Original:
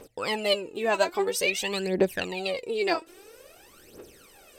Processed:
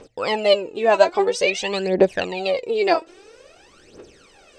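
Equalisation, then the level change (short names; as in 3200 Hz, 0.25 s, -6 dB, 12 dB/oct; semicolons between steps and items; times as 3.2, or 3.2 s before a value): LPF 7100 Hz 24 dB/oct; dynamic EQ 640 Hz, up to +7 dB, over -39 dBFS, Q 1.1; +3.5 dB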